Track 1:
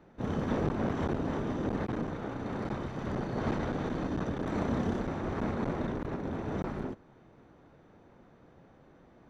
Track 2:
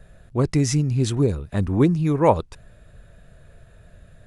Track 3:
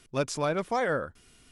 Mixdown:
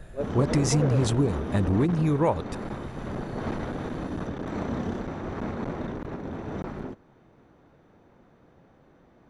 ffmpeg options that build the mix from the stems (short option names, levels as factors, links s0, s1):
-filter_complex "[0:a]volume=1.06[s0];[1:a]acompressor=threshold=0.0708:ratio=6,volume=1.41[s1];[2:a]bandpass=f=460:t=q:w=3:csg=0,tremolo=f=9.5:d=0.69,volume=1.33[s2];[s0][s1][s2]amix=inputs=3:normalize=0"